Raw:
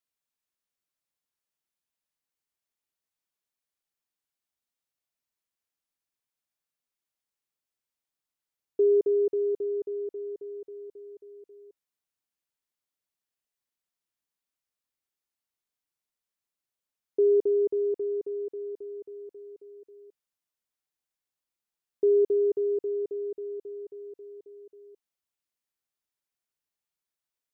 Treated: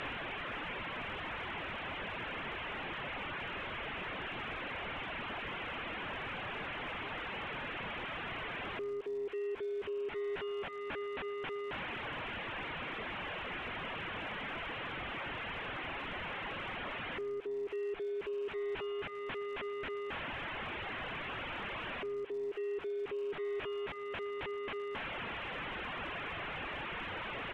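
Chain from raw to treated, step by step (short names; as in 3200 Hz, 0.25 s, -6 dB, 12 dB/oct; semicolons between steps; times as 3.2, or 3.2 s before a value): delta modulation 16 kbps, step -37 dBFS; reverb removal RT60 0.76 s; compressor 4:1, threshold -40 dBFS, peak gain reduction 15.5 dB; limiter -39.5 dBFS, peak gain reduction 11.5 dB; crackle 160/s -55 dBFS; air absorption 60 m; feedback echo 0.116 s, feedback 45%, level -21.5 dB; gain +6 dB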